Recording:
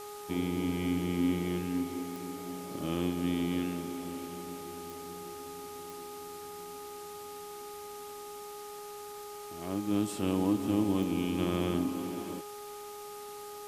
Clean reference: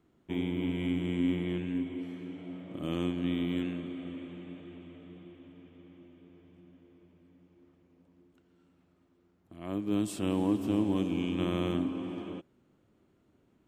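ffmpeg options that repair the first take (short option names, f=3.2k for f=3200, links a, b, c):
-af "adeclick=t=4,bandreject=f=413.4:t=h:w=4,bandreject=f=826.8:t=h:w=4,bandreject=f=1.2402k:t=h:w=4,afwtdn=0.0032"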